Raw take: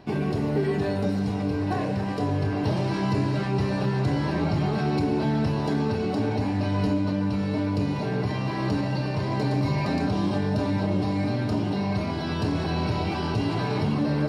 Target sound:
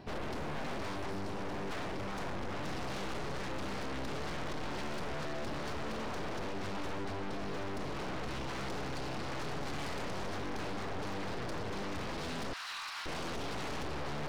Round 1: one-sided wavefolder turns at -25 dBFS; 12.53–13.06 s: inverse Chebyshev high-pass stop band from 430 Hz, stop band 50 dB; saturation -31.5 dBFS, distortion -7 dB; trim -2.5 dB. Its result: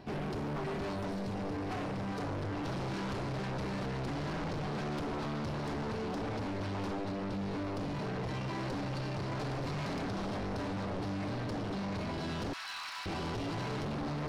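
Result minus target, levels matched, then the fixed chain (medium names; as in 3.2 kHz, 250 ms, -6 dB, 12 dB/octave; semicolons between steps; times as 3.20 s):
one-sided wavefolder: distortion -13 dB
one-sided wavefolder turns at -34 dBFS; 12.53–13.06 s: inverse Chebyshev high-pass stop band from 430 Hz, stop band 50 dB; saturation -31.5 dBFS, distortion -7 dB; trim -2.5 dB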